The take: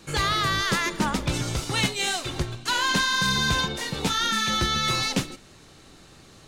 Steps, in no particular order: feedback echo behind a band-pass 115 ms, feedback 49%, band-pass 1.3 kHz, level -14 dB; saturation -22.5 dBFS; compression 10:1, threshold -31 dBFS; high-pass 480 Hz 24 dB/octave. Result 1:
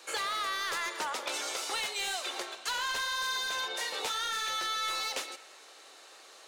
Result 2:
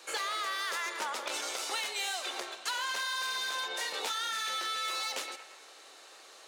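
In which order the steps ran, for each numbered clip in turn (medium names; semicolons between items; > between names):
high-pass > saturation > compression > feedback echo behind a band-pass; feedback echo behind a band-pass > saturation > high-pass > compression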